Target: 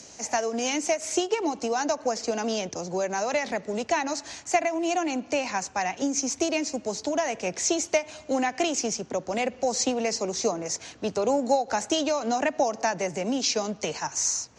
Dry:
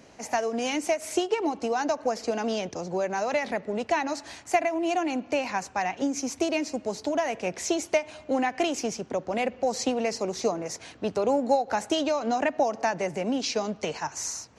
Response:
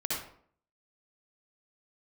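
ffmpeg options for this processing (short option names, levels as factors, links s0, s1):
-filter_complex "[0:a]acrossover=split=180|1300|4300[s0][s1][s2][s3];[s3]acompressor=mode=upward:threshold=0.00562:ratio=2.5[s4];[s0][s1][s2][s4]amix=inputs=4:normalize=0,lowpass=f=6800:t=q:w=2.4"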